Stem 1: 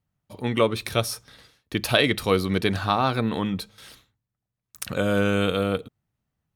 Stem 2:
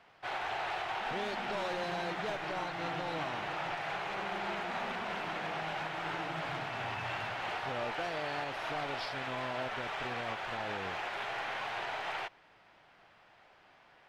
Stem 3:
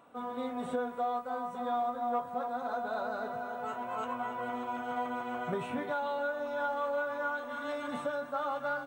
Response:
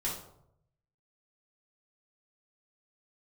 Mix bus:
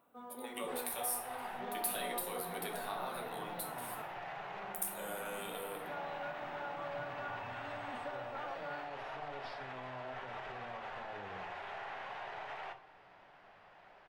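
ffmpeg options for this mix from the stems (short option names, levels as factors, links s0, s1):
-filter_complex "[0:a]highpass=f=340:w=0.5412,highpass=f=340:w=1.3066,acompressor=threshold=0.0562:ratio=2,aexciter=amount=7.8:drive=6.5:freq=8200,volume=0.237,asplit=2[s0][s1];[s1]volume=0.335[s2];[1:a]highshelf=f=2500:g=-11,alimiter=level_in=5.01:limit=0.0631:level=0:latency=1:release=183,volume=0.2,adelay=450,volume=1.26,asplit=2[s3][s4];[s4]volume=0.316[s5];[2:a]volume=0.266,asplit=3[s6][s7][s8];[s6]atrim=end=4.02,asetpts=PTS-STARTPTS,afade=t=out:st=4.016:d=0.004:c=hsin[s9];[s7]atrim=start=4.02:end=5.86,asetpts=PTS-STARTPTS,volume=0[s10];[s8]atrim=start=5.86,asetpts=PTS-STARTPTS,afade=t=in:d=0.004:c=hsin[s11];[s9][s10][s11]concat=n=3:v=0:a=1[s12];[s0][s3]amix=inputs=2:normalize=0,highpass=f=240:w=0.5412,highpass=f=240:w=1.3066,acompressor=threshold=0.00631:ratio=6,volume=1[s13];[3:a]atrim=start_sample=2205[s14];[s2][s5]amix=inputs=2:normalize=0[s15];[s15][s14]afir=irnorm=-1:irlink=0[s16];[s12][s13][s16]amix=inputs=3:normalize=0"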